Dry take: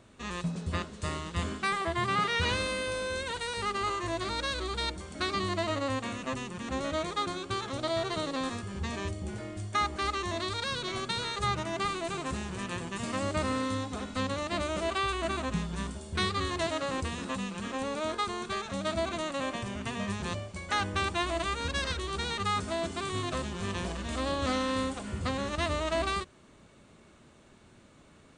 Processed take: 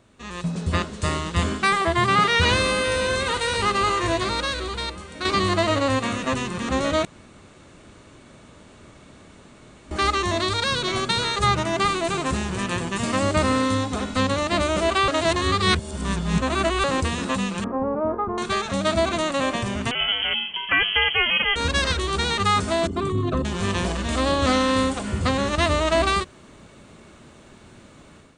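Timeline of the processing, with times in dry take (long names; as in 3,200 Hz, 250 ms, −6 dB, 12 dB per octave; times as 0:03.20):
0:01.93–0:03.00: delay throw 560 ms, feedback 85%, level −13 dB
0:04.12–0:05.25: fade out quadratic, to −8.5 dB
0:07.05–0:09.91: fill with room tone
0:15.08–0:16.84: reverse
0:17.64–0:18.38: low-pass filter 1,100 Hz 24 dB per octave
0:19.91–0:21.56: voice inversion scrambler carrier 3,200 Hz
0:22.87–0:23.45: spectral envelope exaggerated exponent 2
whole clip: automatic gain control gain up to 10 dB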